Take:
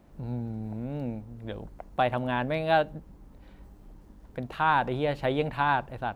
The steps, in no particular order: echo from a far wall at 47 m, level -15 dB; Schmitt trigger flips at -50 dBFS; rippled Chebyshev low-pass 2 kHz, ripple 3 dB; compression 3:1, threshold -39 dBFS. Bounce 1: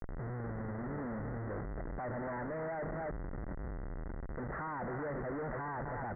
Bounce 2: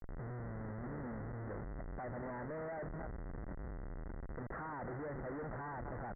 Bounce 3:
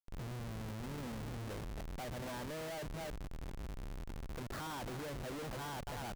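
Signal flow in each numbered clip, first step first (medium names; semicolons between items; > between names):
echo from a far wall > Schmitt trigger > compression > rippled Chebyshev low-pass; compression > echo from a far wall > Schmitt trigger > rippled Chebyshev low-pass; echo from a far wall > compression > rippled Chebyshev low-pass > Schmitt trigger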